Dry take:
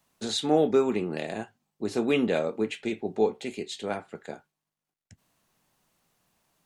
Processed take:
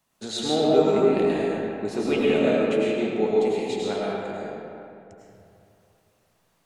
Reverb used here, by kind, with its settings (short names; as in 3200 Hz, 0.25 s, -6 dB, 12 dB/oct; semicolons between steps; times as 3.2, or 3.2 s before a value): digital reverb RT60 2.7 s, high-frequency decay 0.55×, pre-delay 65 ms, DRR -6 dB; gain -2.5 dB